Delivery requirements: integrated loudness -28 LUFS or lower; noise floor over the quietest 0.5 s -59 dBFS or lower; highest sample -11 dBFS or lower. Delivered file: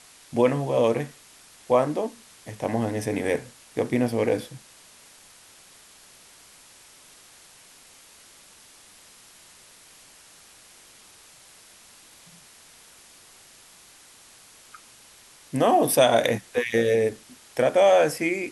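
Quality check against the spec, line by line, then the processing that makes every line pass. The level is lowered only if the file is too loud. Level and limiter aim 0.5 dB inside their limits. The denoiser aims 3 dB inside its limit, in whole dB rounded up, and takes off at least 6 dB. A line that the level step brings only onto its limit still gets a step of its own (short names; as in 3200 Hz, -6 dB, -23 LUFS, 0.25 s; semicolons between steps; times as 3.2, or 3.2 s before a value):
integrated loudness -23.5 LUFS: fail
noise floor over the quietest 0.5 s -52 dBFS: fail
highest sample -6.0 dBFS: fail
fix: denoiser 6 dB, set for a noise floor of -52 dBFS; gain -5 dB; limiter -11.5 dBFS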